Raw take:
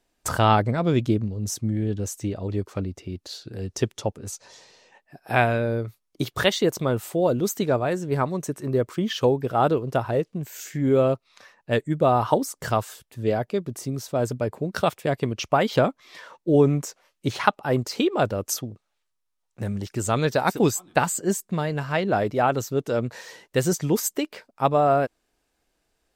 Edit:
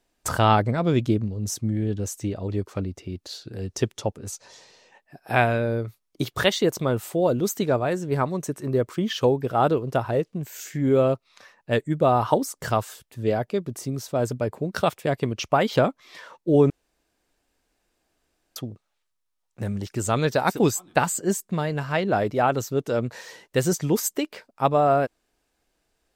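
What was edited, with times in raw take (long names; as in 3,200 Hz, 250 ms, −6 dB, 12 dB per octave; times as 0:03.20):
0:16.70–0:18.56: fill with room tone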